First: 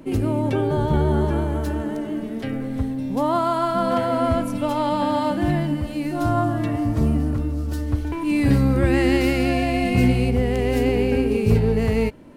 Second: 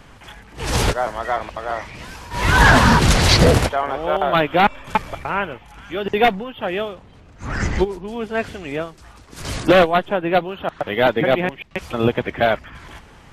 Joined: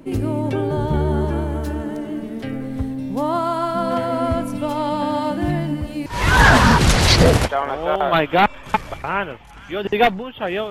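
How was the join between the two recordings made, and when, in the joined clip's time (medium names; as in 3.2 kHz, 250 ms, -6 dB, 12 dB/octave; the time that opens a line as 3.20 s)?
first
6.06 s: go over to second from 2.27 s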